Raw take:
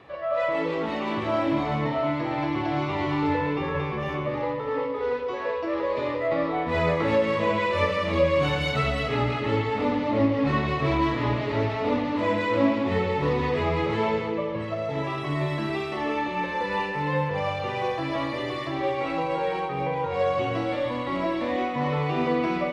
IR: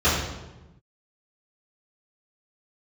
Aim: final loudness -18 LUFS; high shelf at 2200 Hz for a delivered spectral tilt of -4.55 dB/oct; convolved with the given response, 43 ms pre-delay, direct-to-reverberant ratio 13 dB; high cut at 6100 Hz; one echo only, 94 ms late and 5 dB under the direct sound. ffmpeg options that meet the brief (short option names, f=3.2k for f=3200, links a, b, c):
-filter_complex "[0:a]lowpass=6.1k,highshelf=f=2.2k:g=-7.5,aecho=1:1:94:0.562,asplit=2[a][b];[1:a]atrim=start_sample=2205,adelay=43[c];[b][c]afir=irnorm=-1:irlink=0,volume=-32.5dB[d];[a][d]amix=inputs=2:normalize=0,volume=7dB"